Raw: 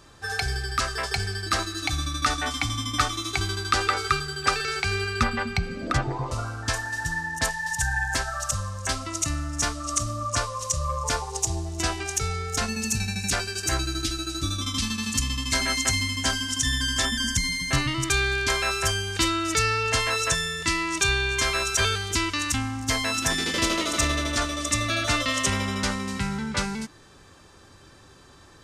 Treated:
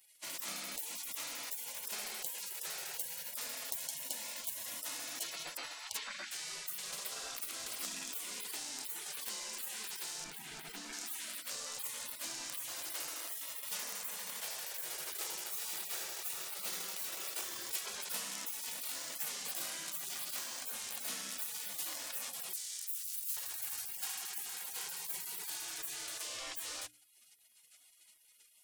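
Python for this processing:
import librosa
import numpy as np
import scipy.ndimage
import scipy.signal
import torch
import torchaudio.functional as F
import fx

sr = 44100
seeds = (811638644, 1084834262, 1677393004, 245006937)

p1 = fx.tracing_dist(x, sr, depth_ms=0.15)
p2 = fx.spec_gate(p1, sr, threshold_db=-30, keep='weak')
p3 = fx.differentiator(p2, sr, at=(22.53, 23.37))
p4 = fx.hum_notches(p3, sr, base_hz=60, count=5)
p5 = fx.over_compress(p4, sr, threshold_db=-52.0, ratio=-1.0)
p6 = p4 + F.gain(torch.from_numpy(p5), -1.0).numpy()
p7 = fx.bass_treble(p6, sr, bass_db=10, treble_db=-8, at=(10.24, 10.93))
y = fx.dmg_crackle(p7, sr, seeds[0], per_s=54.0, level_db=-61.0)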